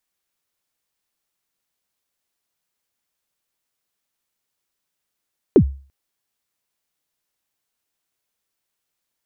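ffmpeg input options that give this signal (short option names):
-f lavfi -i "aevalsrc='0.631*pow(10,-3*t/0.39)*sin(2*PI*(460*0.078/log(68/460)*(exp(log(68/460)*min(t,0.078)/0.078)-1)+68*max(t-0.078,0)))':d=0.34:s=44100"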